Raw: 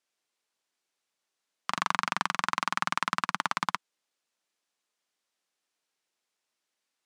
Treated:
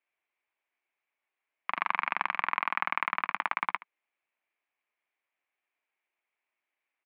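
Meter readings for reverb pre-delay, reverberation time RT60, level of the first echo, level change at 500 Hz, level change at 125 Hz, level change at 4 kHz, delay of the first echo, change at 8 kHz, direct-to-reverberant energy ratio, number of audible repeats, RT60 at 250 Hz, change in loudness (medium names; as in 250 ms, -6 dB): no reverb, no reverb, -18.0 dB, -2.0 dB, under -10 dB, -9.0 dB, 74 ms, under -30 dB, no reverb, 1, no reverb, -0.5 dB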